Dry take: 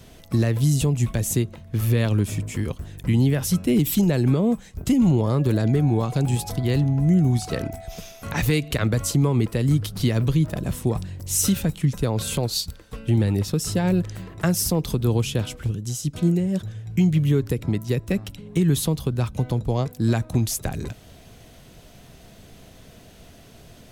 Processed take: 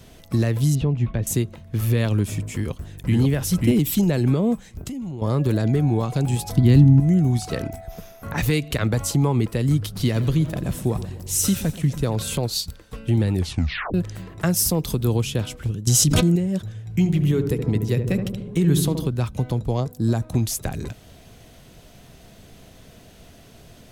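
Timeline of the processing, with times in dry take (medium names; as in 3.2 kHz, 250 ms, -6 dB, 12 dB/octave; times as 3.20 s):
0.75–1.27 s: distance through air 310 m
2.57–3.17 s: echo throw 540 ms, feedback 15%, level -1.5 dB
4.64–5.22 s: compression 12:1, threshold -28 dBFS
6.56–7.00 s: resonant low shelf 360 Hz +7.5 dB, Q 1.5
7.80–8.38 s: high-order bell 4.6 kHz -9 dB 2.3 oct
8.92–9.32 s: peaking EQ 820 Hz +11.5 dB 0.25 oct
9.92–12.16 s: two-band feedback delay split 840 Hz, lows 126 ms, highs 87 ms, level -14 dB
13.35 s: tape stop 0.59 s
14.56–15.17 s: treble shelf 7.1 kHz +6 dB
15.87–16.36 s: level flattener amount 100%
16.87–19.07 s: filtered feedback delay 74 ms, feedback 74%, low-pass 930 Hz, level -5.5 dB
19.80–20.22 s: peaking EQ 2.3 kHz -10.5 dB 1.3 oct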